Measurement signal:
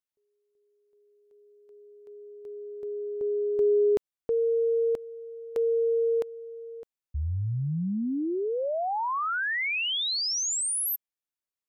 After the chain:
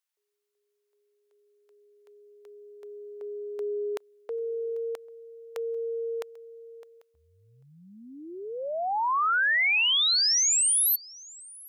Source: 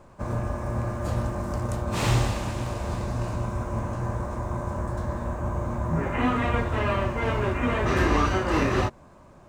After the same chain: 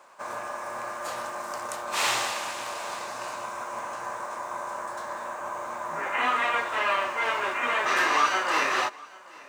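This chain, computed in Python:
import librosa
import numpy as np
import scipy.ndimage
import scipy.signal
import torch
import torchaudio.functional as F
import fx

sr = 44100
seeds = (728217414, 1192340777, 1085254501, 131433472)

p1 = scipy.signal.sosfilt(scipy.signal.butter(2, 930.0, 'highpass', fs=sr, output='sos'), x)
p2 = p1 + fx.echo_single(p1, sr, ms=793, db=-23.0, dry=0)
y = p2 * librosa.db_to_amplitude(5.5)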